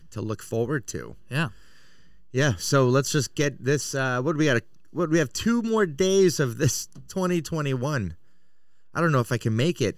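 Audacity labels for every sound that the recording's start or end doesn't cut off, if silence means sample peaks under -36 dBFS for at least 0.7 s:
2.340000	8.130000	sound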